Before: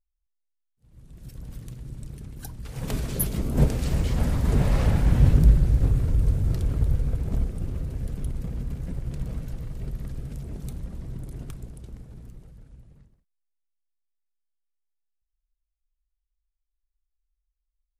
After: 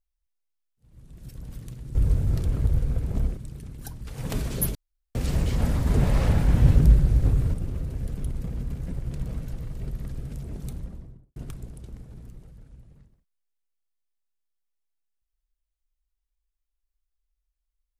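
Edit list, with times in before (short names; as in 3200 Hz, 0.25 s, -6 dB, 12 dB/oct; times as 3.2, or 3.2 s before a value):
3.33–3.73 room tone
6.12–7.54 move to 1.95
10.7–11.36 studio fade out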